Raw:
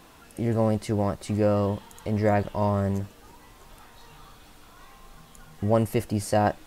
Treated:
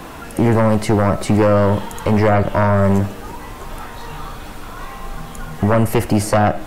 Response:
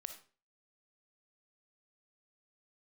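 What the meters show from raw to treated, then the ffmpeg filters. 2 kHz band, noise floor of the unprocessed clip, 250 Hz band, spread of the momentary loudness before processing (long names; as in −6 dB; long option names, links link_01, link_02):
+13.0 dB, −52 dBFS, +10.0 dB, 9 LU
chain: -filter_complex "[0:a]acrossover=split=240|890[link_01][link_02][link_03];[link_01]acompressor=threshold=-33dB:ratio=4[link_04];[link_02]acompressor=threshold=-31dB:ratio=4[link_05];[link_03]acompressor=threshold=-38dB:ratio=4[link_06];[link_04][link_05][link_06]amix=inputs=3:normalize=0,aeval=exprs='0.178*sin(PI/2*2.51*val(0)/0.178)':channel_layout=same,asplit=2[link_07][link_08];[1:a]atrim=start_sample=2205,lowpass=2700[link_09];[link_08][link_09]afir=irnorm=-1:irlink=0,volume=3dB[link_10];[link_07][link_10]amix=inputs=2:normalize=0,volume=2dB"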